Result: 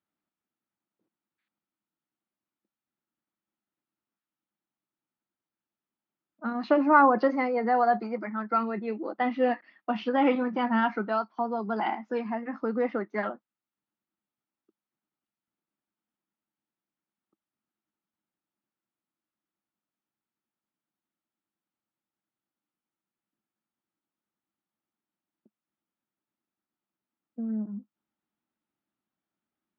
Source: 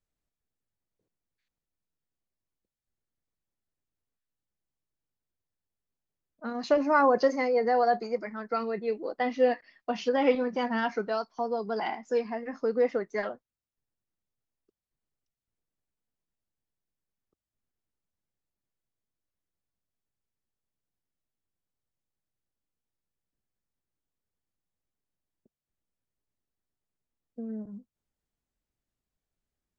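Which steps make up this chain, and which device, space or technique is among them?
kitchen radio (cabinet simulation 180–3600 Hz, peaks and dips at 210 Hz +8 dB, 320 Hz +8 dB, 460 Hz -6 dB, 870 Hz +5 dB, 1.3 kHz +7 dB)

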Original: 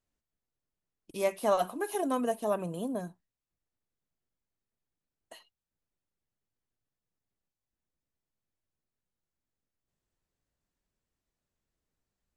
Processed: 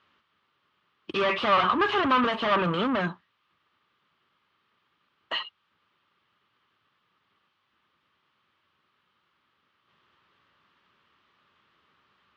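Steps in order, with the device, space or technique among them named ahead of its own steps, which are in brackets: overdrive pedal into a guitar cabinet (overdrive pedal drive 33 dB, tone 2.7 kHz, clips at -14.5 dBFS; cabinet simulation 78–4000 Hz, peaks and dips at 84 Hz +4 dB, 280 Hz -4 dB, 490 Hz -6 dB, 700 Hz -10 dB, 1.2 kHz +10 dB, 3.1 kHz +6 dB)

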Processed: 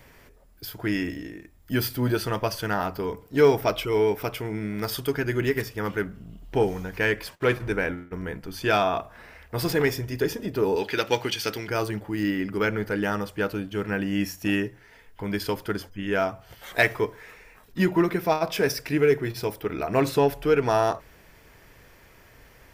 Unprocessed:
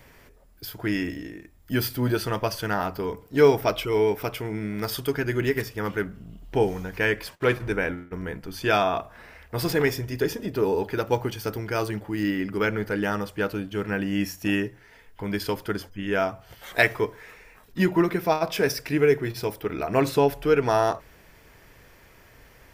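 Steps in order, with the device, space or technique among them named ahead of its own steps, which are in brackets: parallel distortion (in parallel at -10 dB: hard clipper -16 dBFS, distortion -14 dB); 10.76–11.68 s: on the sum: frequency weighting D; trim -2.5 dB

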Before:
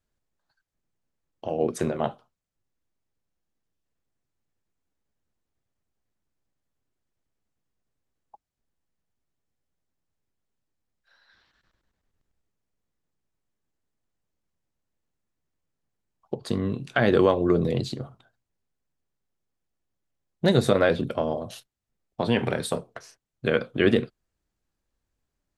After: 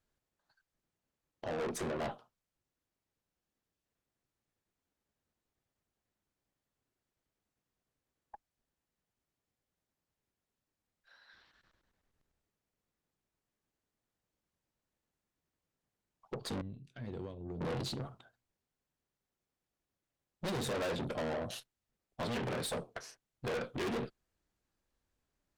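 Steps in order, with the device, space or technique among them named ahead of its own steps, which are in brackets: 16.61–17.61 s: amplifier tone stack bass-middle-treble 10-0-1; tube preamp driven hard (valve stage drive 35 dB, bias 0.5; bass shelf 200 Hz -4.5 dB; treble shelf 5.9 kHz -3.5 dB); trim +2 dB

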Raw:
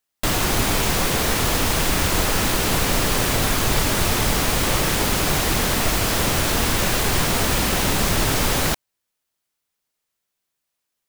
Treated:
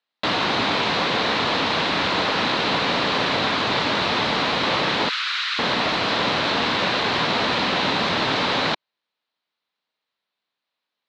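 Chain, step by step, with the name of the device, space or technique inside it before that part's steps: kitchen radio (cabinet simulation 220–4000 Hz, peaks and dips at 370 Hz -4 dB, 1 kHz +3 dB, 4 kHz +7 dB); 5.09–5.59 s: Chebyshev high-pass 1.3 kHz, order 4; trim +1.5 dB

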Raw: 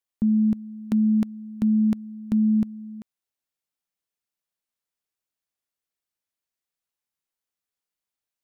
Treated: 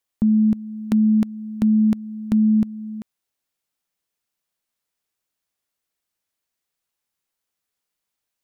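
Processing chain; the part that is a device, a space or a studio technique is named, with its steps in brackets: parallel compression (in parallel at -4.5 dB: compression, threshold -33 dBFS, peak gain reduction 13.5 dB); on the sum: trim +2.5 dB

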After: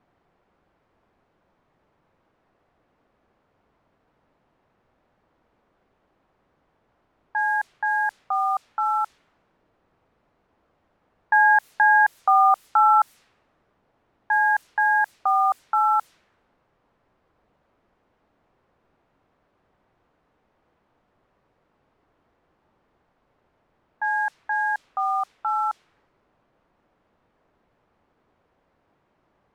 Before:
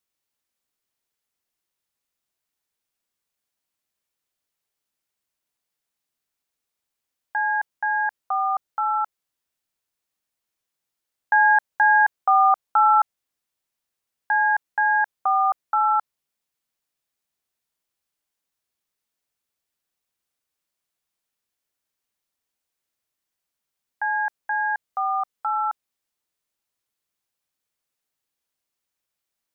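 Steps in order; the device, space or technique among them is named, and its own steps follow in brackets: cassette deck with a dynamic noise filter (white noise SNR 28 dB; level-controlled noise filter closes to 910 Hz, open at -18.5 dBFS)

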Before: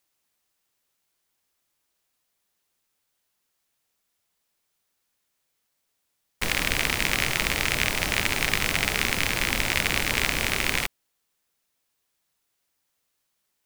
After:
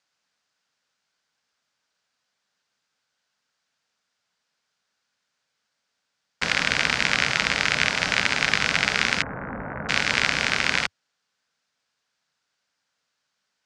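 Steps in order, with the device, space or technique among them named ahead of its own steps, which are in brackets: 9.22–9.89 s: Bessel low-pass 870 Hz, order 8; car door speaker (cabinet simulation 91–6600 Hz, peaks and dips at 93 Hz -9 dB, 350 Hz -9 dB, 1.5 kHz +7 dB, 4.8 kHz +3 dB); trim +2 dB

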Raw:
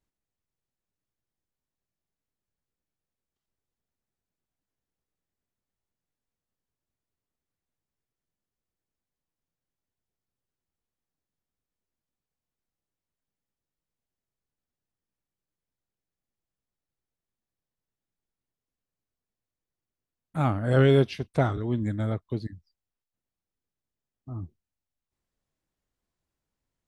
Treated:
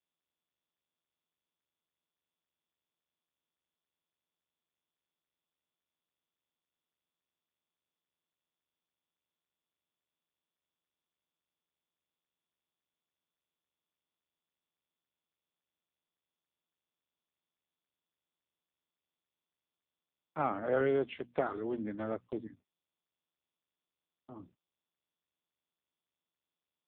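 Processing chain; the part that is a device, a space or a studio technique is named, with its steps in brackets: steep low-pass 4.5 kHz 48 dB/octave; hum notches 60/120/180/240 Hz; gate -43 dBFS, range -56 dB; high-pass 77 Hz 24 dB/octave; voicemail (band-pass 340–3300 Hz; compression 8:1, threshold -25 dBFS, peak gain reduction 7 dB; AMR-NB 5.15 kbps 8 kHz)

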